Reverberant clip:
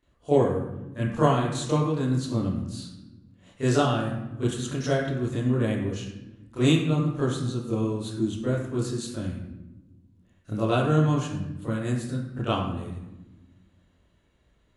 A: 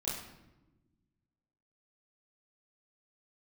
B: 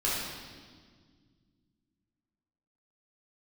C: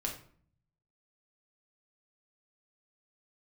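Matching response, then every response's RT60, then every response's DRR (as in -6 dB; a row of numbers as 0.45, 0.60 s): A; 1.0, 1.7, 0.50 s; -9.0, -7.5, -0.5 dB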